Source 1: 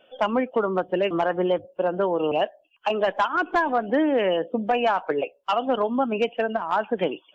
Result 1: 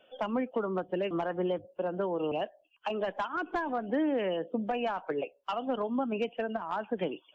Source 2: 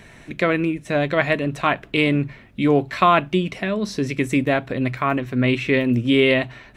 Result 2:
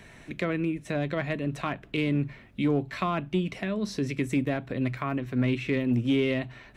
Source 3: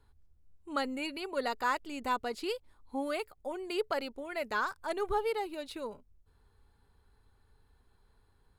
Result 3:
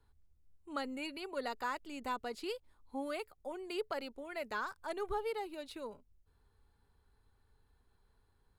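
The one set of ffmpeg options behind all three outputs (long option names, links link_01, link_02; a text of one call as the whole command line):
ffmpeg -i in.wav -filter_complex "[0:a]acrossover=split=320[link_01][link_02];[link_02]acompressor=threshold=-30dB:ratio=2[link_03];[link_01][link_03]amix=inputs=2:normalize=0,asplit=2[link_04][link_05];[link_05]asoftclip=type=hard:threshold=-15dB,volume=-7dB[link_06];[link_04][link_06]amix=inputs=2:normalize=0,volume=-8dB" out.wav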